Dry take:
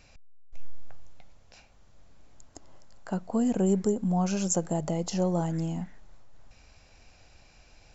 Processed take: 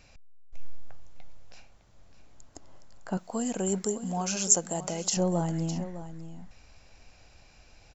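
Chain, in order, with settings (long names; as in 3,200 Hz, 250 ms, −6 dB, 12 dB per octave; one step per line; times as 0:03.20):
0:03.17–0:05.17: spectral tilt +3 dB per octave
single-tap delay 608 ms −13 dB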